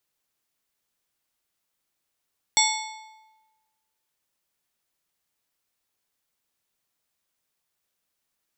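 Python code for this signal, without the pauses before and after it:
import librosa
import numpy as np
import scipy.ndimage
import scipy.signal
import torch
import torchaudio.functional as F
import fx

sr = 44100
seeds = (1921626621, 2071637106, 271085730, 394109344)

y = fx.strike_metal(sr, length_s=1.55, level_db=-22, body='plate', hz=875.0, decay_s=1.23, tilt_db=0, modes=7)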